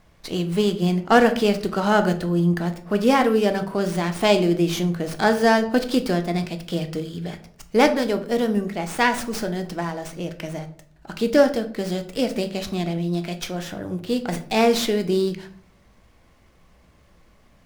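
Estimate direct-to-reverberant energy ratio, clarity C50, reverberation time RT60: 7.0 dB, 13.5 dB, 0.55 s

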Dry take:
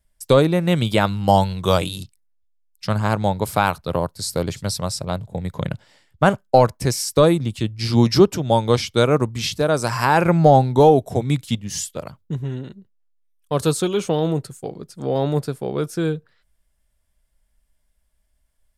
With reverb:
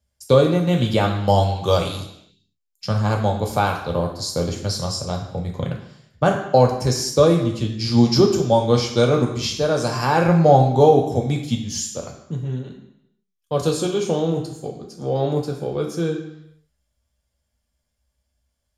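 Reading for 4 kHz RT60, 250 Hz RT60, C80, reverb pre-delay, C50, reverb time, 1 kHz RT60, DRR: 0.80 s, 0.70 s, 9.0 dB, 3 ms, 7.0 dB, 0.80 s, 0.85 s, 0.5 dB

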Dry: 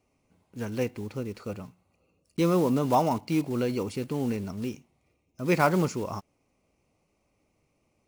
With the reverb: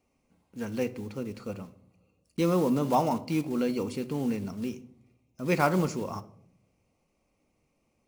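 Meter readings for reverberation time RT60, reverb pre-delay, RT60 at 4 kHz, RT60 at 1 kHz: 0.70 s, 4 ms, 0.40 s, 0.55 s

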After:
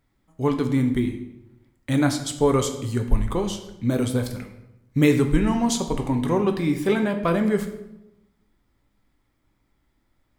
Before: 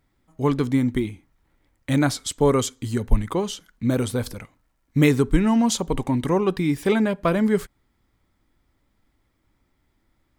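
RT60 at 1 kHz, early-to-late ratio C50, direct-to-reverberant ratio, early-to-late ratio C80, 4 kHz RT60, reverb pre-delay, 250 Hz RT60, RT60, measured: 0.85 s, 9.5 dB, 5.5 dB, 11.5 dB, 0.65 s, 7 ms, 1.1 s, 0.95 s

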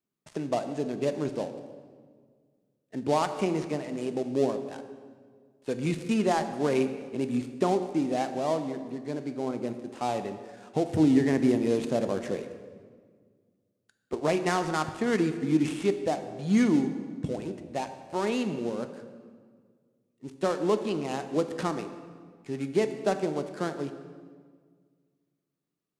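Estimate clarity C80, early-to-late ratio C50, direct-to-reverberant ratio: 11.0 dB, 10.0 dB, 8.0 dB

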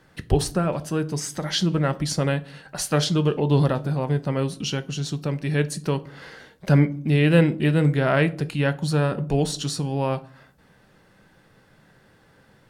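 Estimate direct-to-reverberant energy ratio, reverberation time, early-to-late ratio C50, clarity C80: 10.5 dB, 0.50 s, 19.5 dB, 24.0 dB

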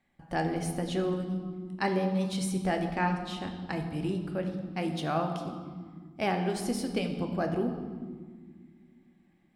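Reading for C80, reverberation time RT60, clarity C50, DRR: 8.5 dB, 1.8 s, 7.0 dB, 4.0 dB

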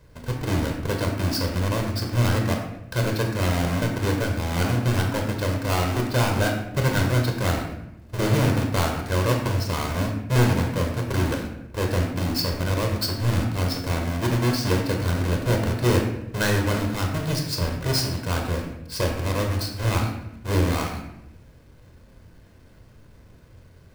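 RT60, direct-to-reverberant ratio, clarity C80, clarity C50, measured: 0.85 s, 2.0 dB, 7.5 dB, 5.0 dB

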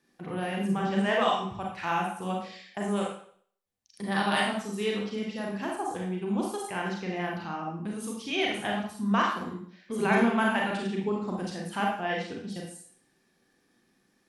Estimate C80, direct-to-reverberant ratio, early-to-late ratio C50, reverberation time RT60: 6.5 dB, -2.0 dB, 2.0 dB, 0.55 s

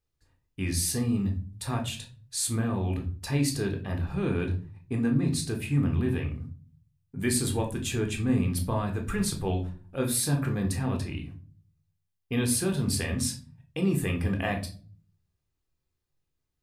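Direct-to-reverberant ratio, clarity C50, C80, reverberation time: 3.0 dB, 11.5 dB, 17.0 dB, 0.40 s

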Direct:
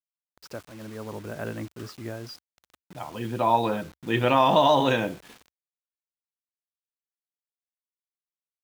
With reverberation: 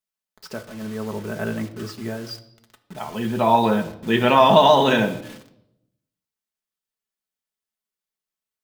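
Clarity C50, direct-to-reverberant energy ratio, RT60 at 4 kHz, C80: 14.5 dB, 4.0 dB, 0.70 s, 17.5 dB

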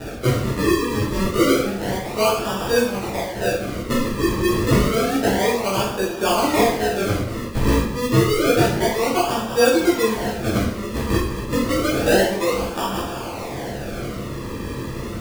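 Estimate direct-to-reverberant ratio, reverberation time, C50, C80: -9.5 dB, 0.65 s, 3.0 dB, 6.5 dB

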